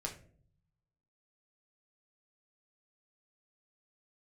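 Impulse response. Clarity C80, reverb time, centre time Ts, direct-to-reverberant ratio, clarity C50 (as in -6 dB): 15.0 dB, no single decay rate, 16 ms, -0.5 dB, 11.0 dB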